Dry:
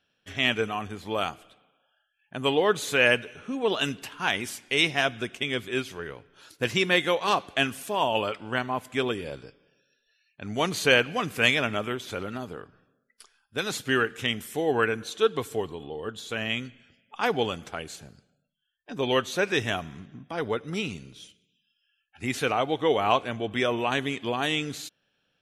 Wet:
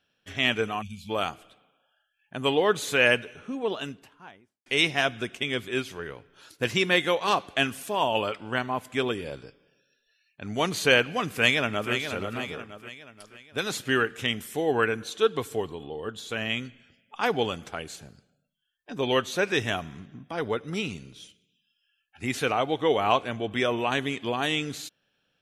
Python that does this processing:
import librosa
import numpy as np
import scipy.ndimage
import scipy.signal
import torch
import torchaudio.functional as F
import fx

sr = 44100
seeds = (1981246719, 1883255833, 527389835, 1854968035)

y = fx.spec_box(x, sr, start_s=0.82, length_s=0.28, low_hz=250.0, high_hz=2200.0, gain_db=-28)
y = fx.studio_fade_out(y, sr, start_s=3.12, length_s=1.54)
y = fx.echo_throw(y, sr, start_s=11.33, length_s=0.59, ms=480, feedback_pct=45, wet_db=-8.0)